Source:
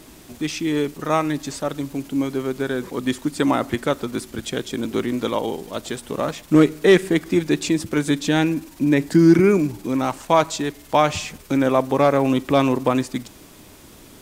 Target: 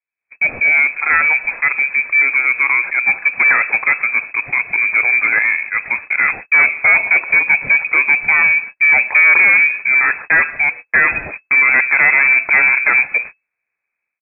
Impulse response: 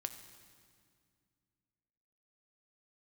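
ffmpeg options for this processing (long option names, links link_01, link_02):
-af "agate=range=-44dB:threshold=-35dB:ratio=16:detection=peak,equalizer=frequency=890:width=5.7:gain=4.5,aresample=11025,asoftclip=type=tanh:threshold=-19.5dB,aresample=44100,dynaudnorm=framelen=160:gausssize=3:maxgain=15dB,lowpass=frequency=2200:width_type=q:width=0.5098,lowpass=frequency=2200:width_type=q:width=0.6013,lowpass=frequency=2200:width_type=q:width=0.9,lowpass=frequency=2200:width_type=q:width=2.563,afreqshift=-2600,volume=-2.5dB"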